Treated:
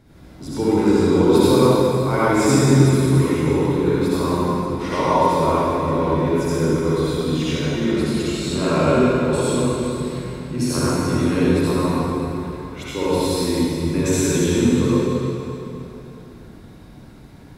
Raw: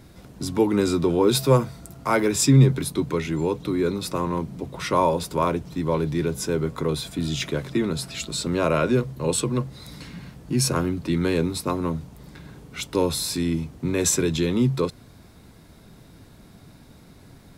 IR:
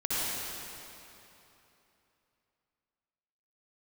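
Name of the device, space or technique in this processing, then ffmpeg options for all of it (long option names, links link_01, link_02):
swimming-pool hall: -filter_complex "[1:a]atrim=start_sample=2205[link_01];[0:a][link_01]afir=irnorm=-1:irlink=0,highshelf=frequency=4100:gain=-7,asettb=1/sr,asplit=3[link_02][link_03][link_04];[link_02]atrim=end=3.154[link_05];[link_03]atrim=start=3.15:end=4.66,asetpts=PTS-STARTPTS,afade=type=in:duration=0.004:curve=qsin,afade=type=out:start_time=1.506:duration=0.004:curve=qsin,highshelf=frequency=12000:gain=5[link_06];[link_04]atrim=start=4.656[link_07];[link_05][link_06]acrossfade=duration=0.004:curve1=hsin:curve2=qsin[link_08];[link_08][link_07]acrossfade=duration=0.004:curve1=qsin:curve2=hsin,volume=-4dB"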